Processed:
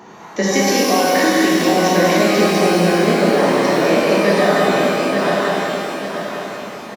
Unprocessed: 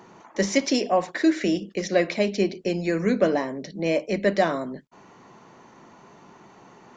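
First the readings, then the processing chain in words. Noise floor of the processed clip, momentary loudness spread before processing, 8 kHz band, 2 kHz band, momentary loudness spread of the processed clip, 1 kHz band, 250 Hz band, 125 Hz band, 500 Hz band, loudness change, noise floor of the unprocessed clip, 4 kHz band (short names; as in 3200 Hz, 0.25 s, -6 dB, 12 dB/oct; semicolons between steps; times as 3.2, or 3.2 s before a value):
-37 dBFS, 8 LU, n/a, +12.5 dB, 10 LU, +13.5 dB, +8.5 dB, +10.5 dB, +10.0 dB, +9.0 dB, -52 dBFS, +12.5 dB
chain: regenerating reverse delay 0.442 s, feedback 60%, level -5.5 dB; low shelf 74 Hz -9.5 dB; compressor, threshold -23 dBFS, peak gain reduction 9 dB; echo 0.203 s -5 dB; shimmer reverb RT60 1.7 s, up +12 st, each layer -8 dB, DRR -4.5 dB; gain +6.5 dB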